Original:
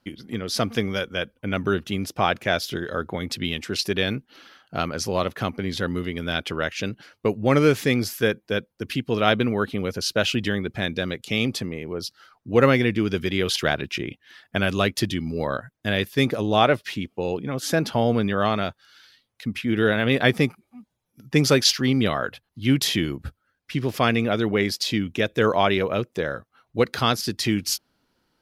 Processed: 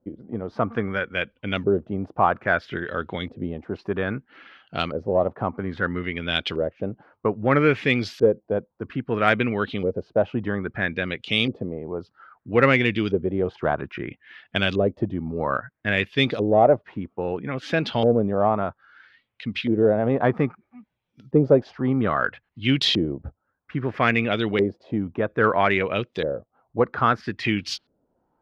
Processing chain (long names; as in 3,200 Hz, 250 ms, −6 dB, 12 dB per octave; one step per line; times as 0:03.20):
auto-filter low-pass saw up 0.61 Hz 470–4,100 Hz
harmonic generator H 5 −33 dB, 6 −42 dB, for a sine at 1 dBFS
level −2.5 dB